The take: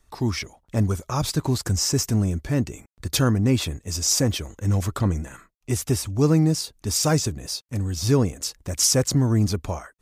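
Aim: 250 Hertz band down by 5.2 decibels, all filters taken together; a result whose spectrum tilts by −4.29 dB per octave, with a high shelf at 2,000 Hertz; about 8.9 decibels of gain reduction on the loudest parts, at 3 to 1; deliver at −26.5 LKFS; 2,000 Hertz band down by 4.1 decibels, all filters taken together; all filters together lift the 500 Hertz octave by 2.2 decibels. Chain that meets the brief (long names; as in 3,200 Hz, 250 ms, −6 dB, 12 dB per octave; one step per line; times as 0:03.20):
parametric band 250 Hz −9 dB
parametric band 500 Hz +5.5 dB
high-shelf EQ 2,000 Hz +3.5 dB
parametric band 2,000 Hz −8 dB
downward compressor 3 to 1, threshold −26 dBFS
level +2.5 dB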